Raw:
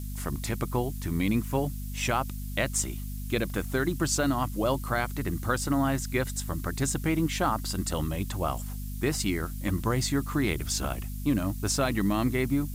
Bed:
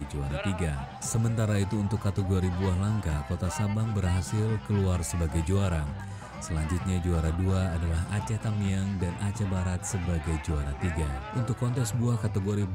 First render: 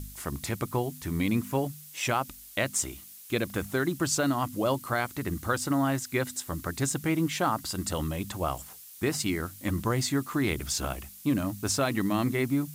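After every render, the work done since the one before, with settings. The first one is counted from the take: de-hum 50 Hz, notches 5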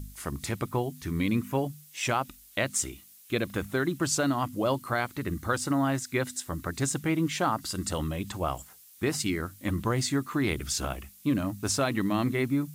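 noise print and reduce 6 dB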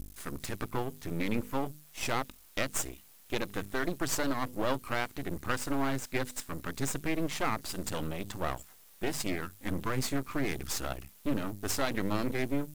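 half-wave rectifier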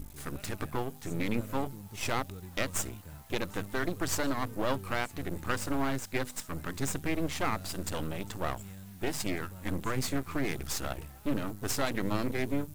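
add bed -18.5 dB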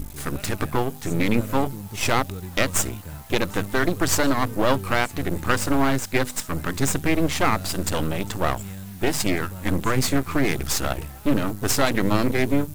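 gain +10.5 dB

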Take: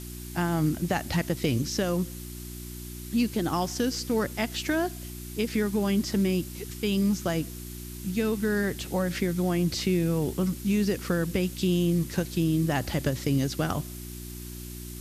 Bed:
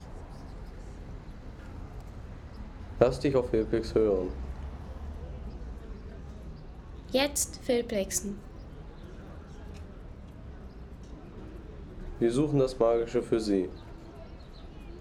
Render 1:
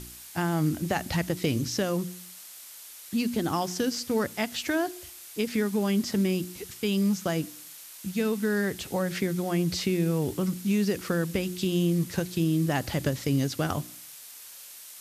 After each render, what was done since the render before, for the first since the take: de-hum 60 Hz, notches 6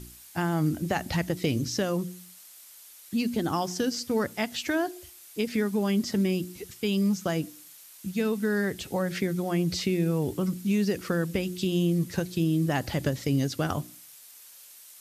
denoiser 6 dB, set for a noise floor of -46 dBFS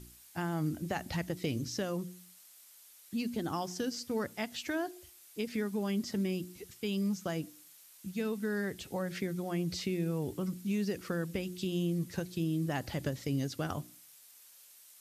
gain -7.5 dB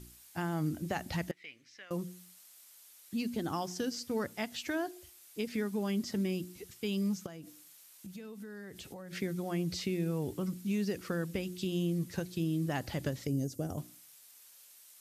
1.31–1.91 band-pass 2100 Hz, Q 3.5; 7.26–9.13 compressor 10:1, threshold -42 dBFS; 13.27–13.78 band shelf 2000 Hz -15 dB 2.6 oct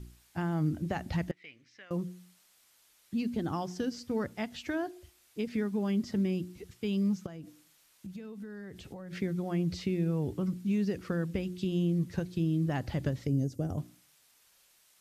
LPF 3300 Hz 6 dB/oct; low shelf 170 Hz +8.5 dB

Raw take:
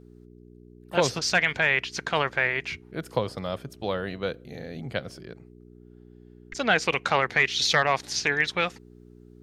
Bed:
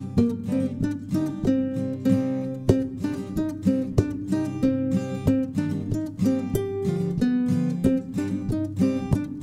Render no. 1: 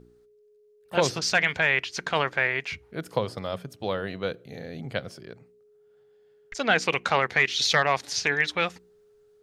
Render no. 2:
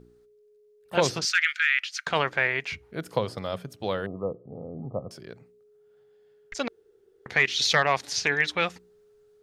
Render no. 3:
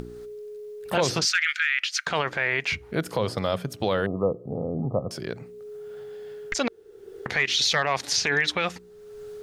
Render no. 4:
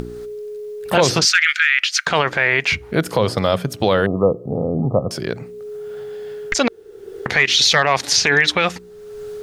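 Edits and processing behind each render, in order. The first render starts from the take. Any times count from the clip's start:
de-hum 60 Hz, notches 6
1.25–2.07 brick-wall FIR high-pass 1200 Hz; 4.06–5.11 brick-wall FIR low-pass 1300 Hz; 6.68–7.26 room tone
in parallel at +1 dB: upward compressor, threshold -26 dBFS; on the sum: limiter -12.5 dBFS, peak gain reduction 10 dB
gain +8.5 dB

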